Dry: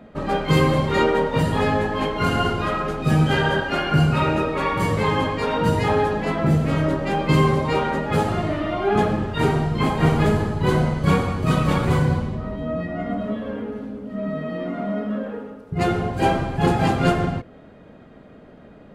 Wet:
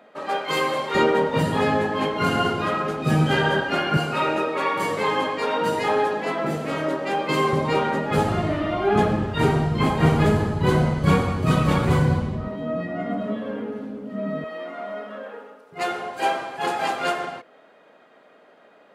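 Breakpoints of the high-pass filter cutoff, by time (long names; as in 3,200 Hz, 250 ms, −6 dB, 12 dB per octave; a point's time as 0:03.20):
530 Hz
from 0:00.95 140 Hz
from 0:03.97 330 Hz
from 0:07.53 140 Hz
from 0:08.18 42 Hz
from 0:12.48 170 Hz
from 0:14.44 620 Hz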